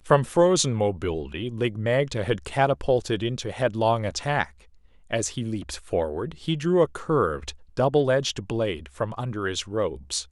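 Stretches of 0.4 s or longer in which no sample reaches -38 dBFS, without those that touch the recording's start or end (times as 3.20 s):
4.47–5.11 s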